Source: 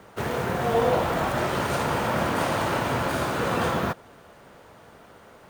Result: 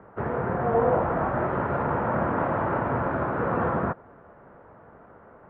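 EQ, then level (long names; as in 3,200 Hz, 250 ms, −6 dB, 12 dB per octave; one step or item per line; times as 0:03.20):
low-pass filter 1,600 Hz 24 dB per octave
0.0 dB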